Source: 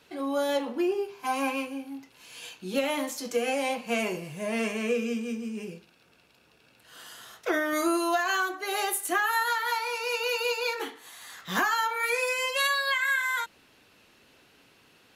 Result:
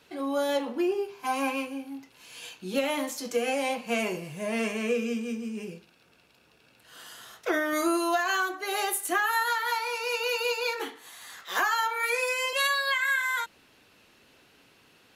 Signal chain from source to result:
0:11.43–0:12.53: high-pass filter 390 Hz 24 dB per octave

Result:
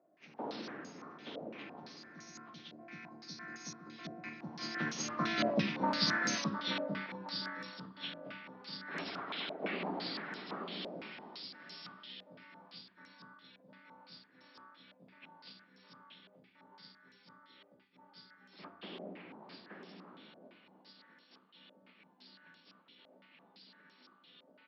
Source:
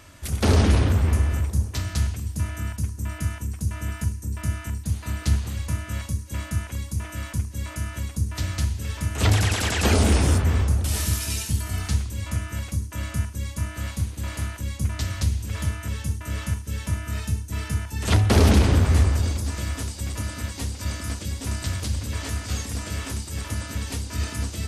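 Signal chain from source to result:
hearing-aid frequency compression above 1,400 Hz 1.5 to 1
source passing by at 0:05.61, 30 m/s, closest 6.5 metres
elliptic high-pass filter 180 Hz, stop band 60 dB
single-tap delay 876 ms −4.5 dB
on a send at −11.5 dB: convolution reverb, pre-delay 3 ms
on the sum: low-pass on a step sequencer 5.9 Hz 620–6,600 Hz
level +7 dB

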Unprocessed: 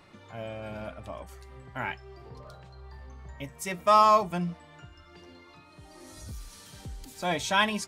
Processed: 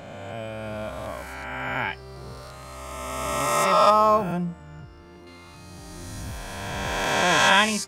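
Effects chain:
peak hold with a rise ahead of every peak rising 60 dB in 2.51 s
0:03.90–0:05.27: parametric band 4,300 Hz −11 dB 2.6 octaves
level +2.5 dB

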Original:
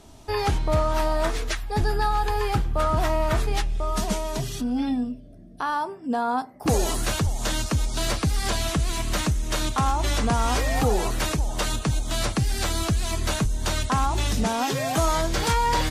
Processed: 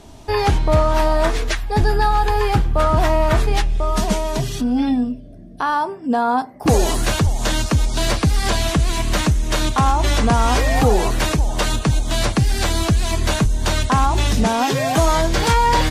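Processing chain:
high-shelf EQ 5,600 Hz −5 dB
notch filter 1,300 Hz, Q 20
level +7 dB

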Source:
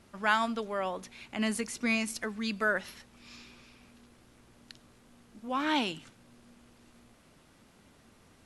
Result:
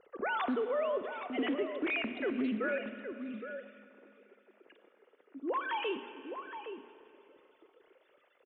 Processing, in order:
three sine waves on the formant tracks
low shelf with overshoot 610 Hz +6 dB, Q 1.5
mains-hum notches 60/120/180/240 Hz
brickwall limiter −26.5 dBFS, peak gain reduction 11.5 dB
0:02.30–0:05.80: band-pass filter 190–2,600 Hz
slap from a distant wall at 140 metres, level −8 dB
four-comb reverb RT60 2.7 s, combs from 29 ms, DRR 10 dB
highs frequency-modulated by the lows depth 0.13 ms

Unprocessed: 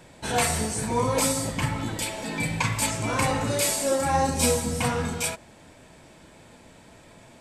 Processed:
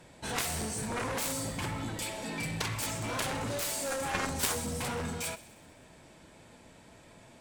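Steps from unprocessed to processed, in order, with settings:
harmonic generator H 3 −7 dB, 7 −25 dB, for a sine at −10 dBFS
delay with a high-pass on its return 64 ms, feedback 69%, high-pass 2,100 Hz, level −16 dB
level −2 dB

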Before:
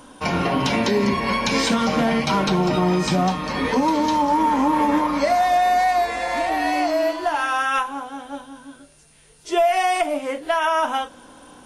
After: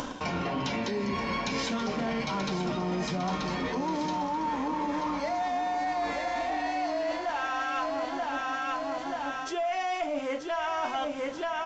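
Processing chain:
mu-law and A-law mismatch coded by A
repeating echo 933 ms, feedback 33%, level −8 dB
in parallel at −3 dB: soft clipping −24.5 dBFS, distortion −7 dB
on the sum: upward compression, threshold −19 dBFS
downsampling to 16,000 Hz
reversed playback
downward compressor 6 to 1, threshold −25 dBFS, peak gain reduction 11.5 dB
reversed playback
level −3.5 dB

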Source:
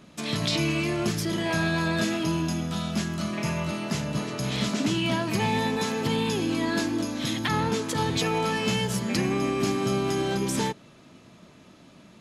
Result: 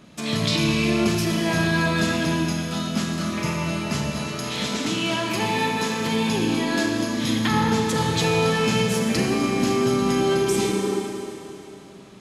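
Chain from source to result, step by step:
0:04.10–0:06.30: low-shelf EQ 220 Hz −9.5 dB
0:10.46–0:10.96: healed spectral selection 260–1,900 Hz before
four-comb reverb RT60 2.9 s, combs from 28 ms, DRR 1.5 dB
level +2 dB

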